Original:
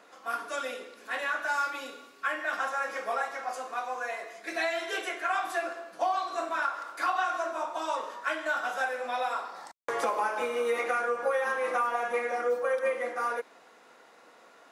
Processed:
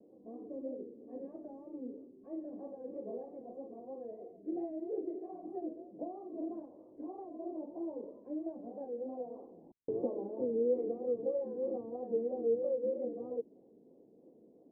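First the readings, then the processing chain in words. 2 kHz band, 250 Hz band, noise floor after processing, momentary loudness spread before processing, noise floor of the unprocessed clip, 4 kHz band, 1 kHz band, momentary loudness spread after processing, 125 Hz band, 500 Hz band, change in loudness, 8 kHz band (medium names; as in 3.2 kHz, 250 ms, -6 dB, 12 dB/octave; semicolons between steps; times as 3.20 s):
under -40 dB, +6.0 dB, -62 dBFS, 8 LU, -57 dBFS, under -40 dB, -22.5 dB, 14 LU, no reading, -4.0 dB, -8.5 dB, under -35 dB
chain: inverse Chebyshev low-pass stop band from 1.3 kHz, stop band 60 dB; vibrato 3.1 Hz 99 cents; trim +7 dB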